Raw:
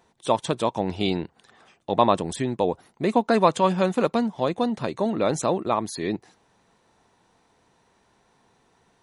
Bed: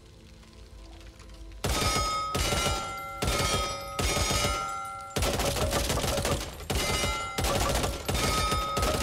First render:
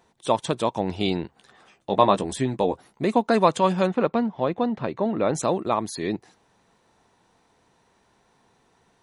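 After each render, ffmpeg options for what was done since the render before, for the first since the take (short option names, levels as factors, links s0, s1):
-filter_complex "[0:a]asettb=1/sr,asplit=3[s0][s1][s2];[s0]atrim=end=1.224[s3];[s1]atrim=start=1.22:end=3.05,asetpts=PTS-STARTPTS,afade=t=in:d=0.004:c=qsin,afade=t=out:st=1.826:d=0.004:c=qsin,asplit=2[s4][s5];[s5]adelay=15,volume=0.447[s6];[s4][s6]amix=inputs=2:normalize=0,atrim=end_sample=80703[s7];[s2]atrim=start=3.046[s8];[s3][s7]acrossfade=d=0.004:c1=hsin:c2=qsin[s9];[s9][s8]acrossfade=d=0.004:c1=qsin:c2=hsin,asettb=1/sr,asplit=3[s10][s11][s12];[s10]atrim=end=3.874[s13];[s11]atrim=start=3.87:end=5.35,asetpts=PTS-STARTPTS,afade=t=in:d=0.004:c=qsin,afade=t=out:st=1.476:d=0.004:c=qsin,lowpass=2700[s14];[s12]atrim=start=5.346[s15];[s13][s14]acrossfade=d=0.004:c1=hsin:c2=qsin[s16];[s16][s15]acrossfade=d=0.004:c1=qsin:c2=hsin"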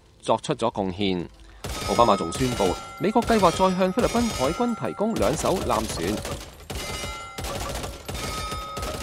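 -filter_complex "[1:a]volume=0.668[s0];[0:a][s0]amix=inputs=2:normalize=0"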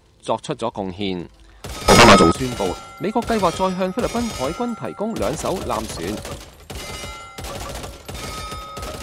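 -filter_complex "[0:a]asettb=1/sr,asplit=3[s0][s1][s2];[s0]atrim=end=1.884[s3];[s1]atrim=start=1.88:end=2.32,asetpts=PTS-STARTPTS,afade=t=in:d=0.004:c=qsin,afade=t=out:st=0.436:d=0.004:c=qsin,aeval=exprs='0.668*sin(PI/2*4.47*val(0)/0.668)':c=same[s4];[s2]atrim=start=2.316[s5];[s3][s4]acrossfade=d=0.004:c1=hsin:c2=qsin[s6];[s6][s5]acrossfade=d=0.004:c1=qsin:c2=hsin"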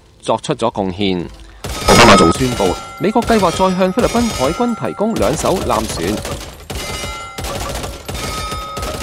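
-af "areverse,acompressor=mode=upward:threshold=0.0251:ratio=2.5,areverse,alimiter=level_in=2.51:limit=0.891:release=50:level=0:latency=1"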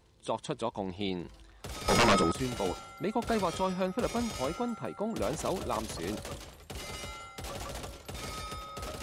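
-af "volume=0.133"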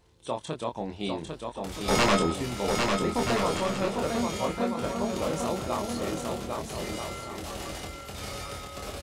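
-filter_complex "[0:a]asplit=2[s0][s1];[s1]adelay=25,volume=0.596[s2];[s0][s2]amix=inputs=2:normalize=0,aecho=1:1:800|1280|1568|1741|1844:0.631|0.398|0.251|0.158|0.1"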